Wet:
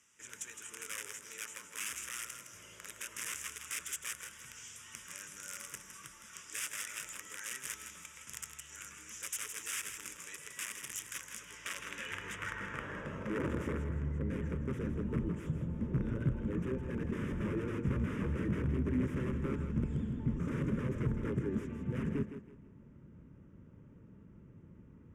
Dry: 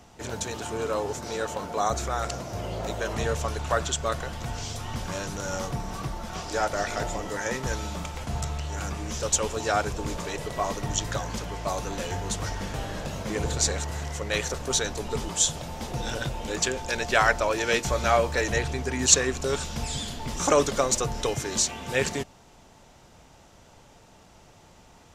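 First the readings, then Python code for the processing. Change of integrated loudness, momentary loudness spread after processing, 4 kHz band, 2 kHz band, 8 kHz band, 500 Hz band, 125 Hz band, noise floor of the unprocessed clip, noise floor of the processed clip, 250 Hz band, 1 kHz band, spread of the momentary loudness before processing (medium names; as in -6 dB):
-11.0 dB, 16 LU, -16.5 dB, -12.5 dB, -14.0 dB, -15.5 dB, -5.0 dB, -54 dBFS, -57 dBFS, -3.0 dB, -20.5 dB, 11 LU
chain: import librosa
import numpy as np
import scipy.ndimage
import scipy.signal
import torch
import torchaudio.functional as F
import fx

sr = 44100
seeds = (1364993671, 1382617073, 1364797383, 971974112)

p1 = fx.dynamic_eq(x, sr, hz=5500.0, q=1.1, threshold_db=-44.0, ratio=4.0, max_db=-5)
p2 = (np.mod(10.0 ** (22.0 / 20.0) * p1 + 1.0, 2.0) - 1.0) / 10.0 ** (22.0 / 20.0)
p3 = scipy.signal.sosfilt(scipy.signal.butter(2, 12000.0, 'lowpass', fs=sr, output='sos'), p2)
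p4 = fx.low_shelf(p3, sr, hz=240.0, db=7.0)
p5 = fx.fixed_phaser(p4, sr, hz=1800.0, stages=4)
p6 = p5 + fx.echo_thinned(p5, sr, ms=162, feedback_pct=30, hz=220.0, wet_db=-8.5, dry=0)
y = fx.filter_sweep_bandpass(p6, sr, from_hz=7100.0, to_hz=220.0, start_s=11.29, end_s=14.16, q=0.8)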